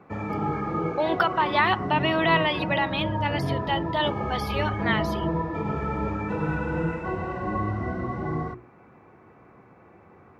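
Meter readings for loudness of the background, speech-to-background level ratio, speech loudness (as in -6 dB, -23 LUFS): -29.0 LUFS, 3.0 dB, -26.0 LUFS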